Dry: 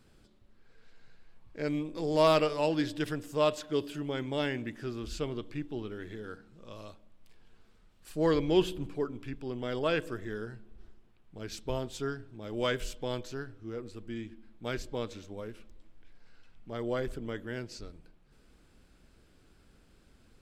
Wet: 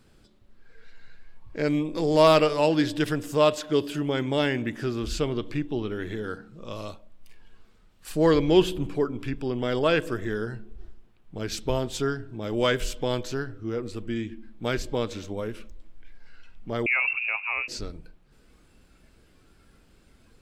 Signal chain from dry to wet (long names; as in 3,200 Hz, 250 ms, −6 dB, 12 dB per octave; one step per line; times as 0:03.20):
in parallel at −2 dB: downward compressor, threshold −39 dBFS, peak gain reduction 18.5 dB
0:16.86–0:17.68: on the sum: voice inversion scrambler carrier 2,700 Hz
noise reduction from a noise print of the clip's start 7 dB
level +5.5 dB